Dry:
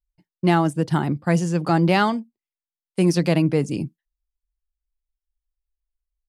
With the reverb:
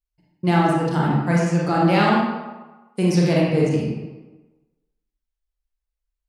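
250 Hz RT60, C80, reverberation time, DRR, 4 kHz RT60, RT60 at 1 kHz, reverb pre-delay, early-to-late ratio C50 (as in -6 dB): 1.1 s, 2.5 dB, 1.2 s, -4.5 dB, 0.80 s, 1.2 s, 29 ms, -0.5 dB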